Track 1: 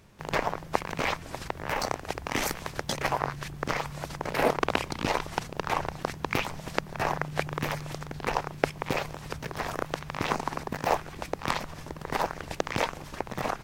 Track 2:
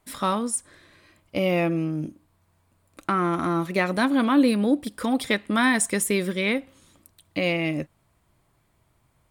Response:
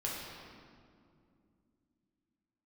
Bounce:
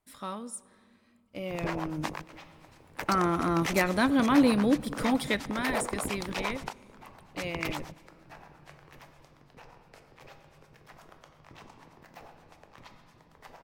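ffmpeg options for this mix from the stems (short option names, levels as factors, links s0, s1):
-filter_complex "[0:a]bandreject=f=49.3:t=h:w=4,bandreject=f=98.6:t=h:w=4,bandreject=f=147.9:t=h:w=4,bandreject=f=197.2:t=h:w=4,bandreject=f=246.5:t=h:w=4,bandreject=f=295.8:t=h:w=4,bandreject=f=345.1:t=h:w=4,bandreject=f=394.4:t=h:w=4,bandreject=f=443.7:t=h:w=4,bandreject=f=493:t=h:w=4,bandreject=f=542.3:t=h:w=4,bandreject=f=591.6:t=h:w=4,bandreject=f=640.9:t=h:w=4,bandreject=f=690.2:t=h:w=4,bandreject=f=739.5:t=h:w=4,bandreject=f=788.8:t=h:w=4,bandreject=f=838.1:t=h:w=4,bandreject=f=887.4:t=h:w=4,bandreject=f=936.7:t=h:w=4,bandreject=f=986:t=h:w=4,bandreject=f=1035.3:t=h:w=4,bandreject=f=1084.6:t=h:w=4,bandreject=f=1133.9:t=h:w=4,bandreject=f=1183.2:t=h:w=4,bandreject=f=1232.5:t=h:w=4,bandreject=f=1281.8:t=h:w=4,bandreject=f=1331.1:t=h:w=4,bandreject=f=1380.4:t=h:w=4,bandreject=f=1429.7:t=h:w=4,bandreject=f=1479:t=h:w=4,asoftclip=type=tanh:threshold=0.1,acrossover=split=520[s0][s1];[s0]aeval=exprs='val(0)*(1-1/2+1/2*cos(2*PI*8.6*n/s))':c=same[s2];[s1]aeval=exprs='val(0)*(1-1/2-1/2*cos(2*PI*8.6*n/s))':c=same[s3];[s2][s3]amix=inputs=2:normalize=0,adelay=1300,volume=1.19,asplit=2[s4][s5];[s5]volume=0.0631[s6];[1:a]volume=0.668,afade=t=in:st=1.67:d=0.62:silence=0.298538,afade=t=out:st=5.16:d=0.42:silence=0.354813,asplit=3[s7][s8][s9];[s8]volume=0.0944[s10];[s9]apad=whole_len=658515[s11];[s4][s11]sidechaingate=range=0.0891:threshold=0.00251:ratio=16:detection=peak[s12];[2:a]atrim=start_sample=2205[s13];[s6][s10]amix=inputs=2:normalize=0[s14];[s14][s13]afir=irnorm=-1:irlink=0[s15];[s12][s7][s15]amix=inputs=3:normalize=0"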